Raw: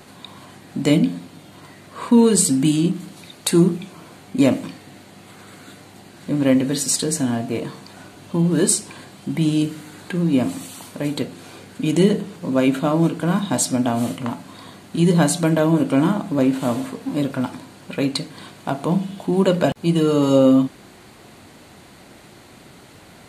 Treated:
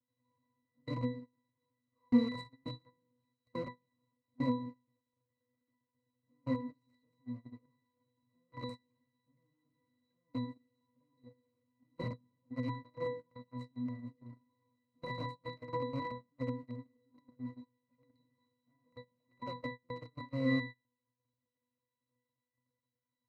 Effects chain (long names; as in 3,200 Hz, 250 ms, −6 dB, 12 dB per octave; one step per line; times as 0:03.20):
one-sided soft clipper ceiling −9.5 dBFS
0:04.54–0:06.49: high-shelf EQ 2,400 Hz −10 dB
log-companded quantiser 2 bits
resonances in every octave B, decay 0.48 s
noise gate −36 dBFS, range −24 dB
0:11.98–0:12.41: low-shelf EQ 340 Hz +7 dB
level −6.5 dB